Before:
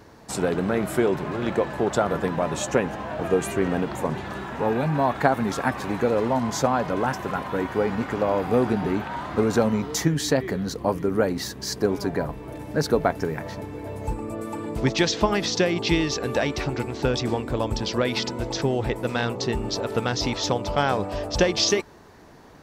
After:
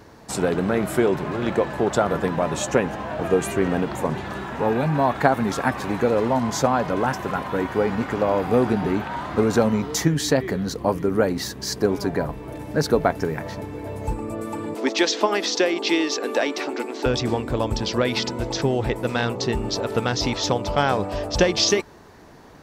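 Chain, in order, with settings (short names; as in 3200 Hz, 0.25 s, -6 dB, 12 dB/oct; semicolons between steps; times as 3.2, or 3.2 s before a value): 14.74–17.06 steep high-pass 250 Hz 36 dB/oct; gain +2 dB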